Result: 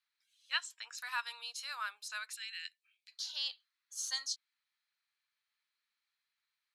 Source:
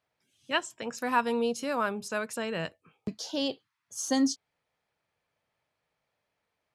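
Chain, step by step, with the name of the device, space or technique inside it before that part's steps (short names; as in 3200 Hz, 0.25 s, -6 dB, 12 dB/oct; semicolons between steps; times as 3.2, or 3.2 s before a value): 2.35–3.12 steep high-pass 1800 Hz 36 dB/oct; headphones lying on a table (HPF 1300 Hz 24 dB/oct; bell 4100 Hz +10 dB 0.3 oct); gain -5 dB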